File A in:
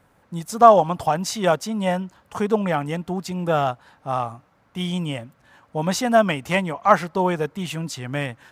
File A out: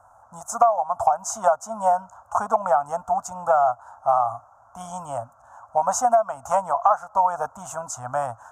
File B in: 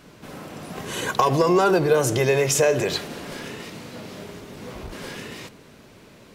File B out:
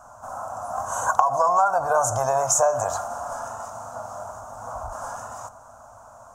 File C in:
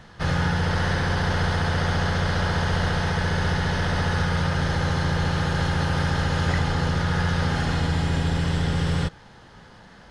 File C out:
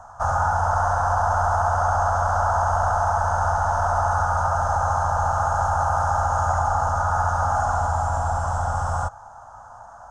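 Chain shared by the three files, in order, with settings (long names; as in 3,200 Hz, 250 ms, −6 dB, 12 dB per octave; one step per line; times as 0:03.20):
drawn EQ curve 110 Hz 0 dB, 160 Hz −18 dB, 250 Hz −10 dB, 370 Hz −27 dB, 680 Hz +15 dB, 1,400 Hz +9 dB, 2,000 Hz −23 dB, 4,300 Hz −20 dB, 6,600 Hz +8 dB, 12,000 Hz −5 dB
downward compressor 12 to 1, threshold −14 dBFS
level −1 dB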